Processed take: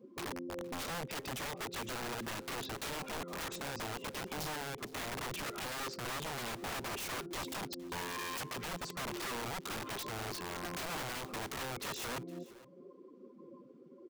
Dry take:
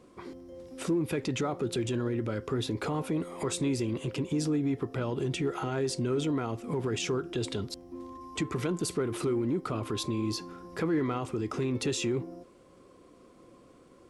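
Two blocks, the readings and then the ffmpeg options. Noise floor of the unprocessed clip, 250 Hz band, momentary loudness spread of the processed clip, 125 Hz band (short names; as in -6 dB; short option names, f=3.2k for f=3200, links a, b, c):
-57 dBFS, -14.5 dB, 9 LU, -14.0 dB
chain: -af "lowpass=f=7k:w=0.5412,lowpass=f=7k:w=1.3066,afftdn=nr=21:nf=-46,highpass=f=120:w=0.5412,highpass=f=120:w=1.3066,highshelf=f=2.7k:g=-4.5,aecho=1:1:5:0.49,acompressor=threshold=-40dB:ratio=10,aeval=exprs='(mod(112*val(0)+1,2)-1)/112':c=same,aecho=1:1:464:0.0944,volume=6dB"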